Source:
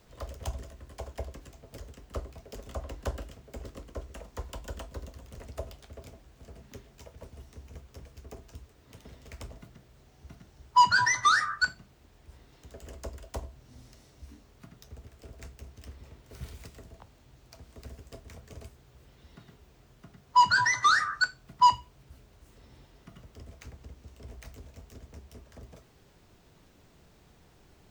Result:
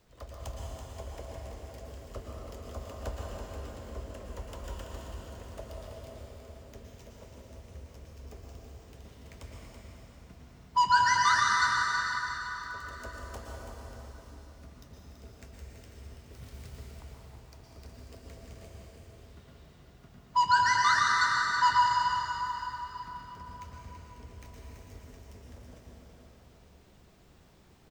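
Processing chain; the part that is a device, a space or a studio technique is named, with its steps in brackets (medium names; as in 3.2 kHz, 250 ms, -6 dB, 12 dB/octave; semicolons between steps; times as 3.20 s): cave (delay 331 ms -8 dB; reverberation RT60 4.0 s, pre-delay 107 ms, DRR -3 dB); trim -5.5 dB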